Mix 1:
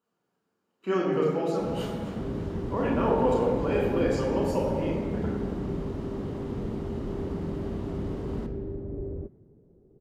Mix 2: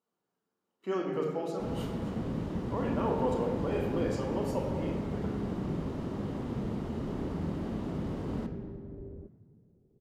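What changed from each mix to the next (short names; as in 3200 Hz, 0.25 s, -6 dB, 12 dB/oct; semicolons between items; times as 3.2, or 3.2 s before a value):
speech: send -8.0 dB; second sound -10.5 dB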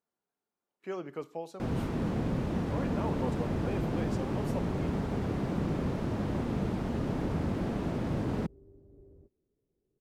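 first sound +6.5 dB; second sound -11.0 dB; reverb: off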